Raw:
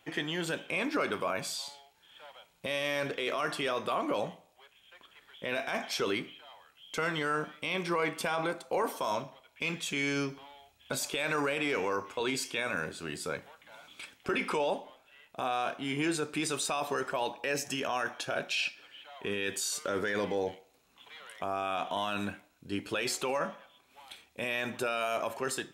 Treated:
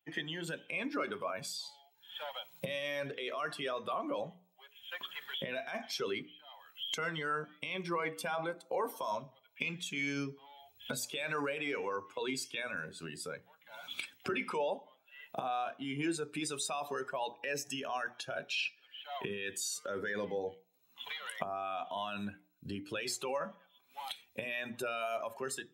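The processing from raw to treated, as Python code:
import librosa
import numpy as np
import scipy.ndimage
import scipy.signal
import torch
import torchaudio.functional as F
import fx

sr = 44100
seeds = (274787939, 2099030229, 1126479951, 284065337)

y = fx.bin_expand(x, sr, power=1.5)
y = fx.recorder_agc(y, sr, target_db=-31.0, rise_db_per_s=43.0, max_gain_db=30)
y = scipy.signal.sosfilt(scipy.signal.butter(4, 100.0, 'highpass', fs=sr, output='sos'), y)
y = fx.hum_notches(y, sr, base_hz=60, count=8)
y = F.gain(torch.from_numpy(y), -1.5).numpy()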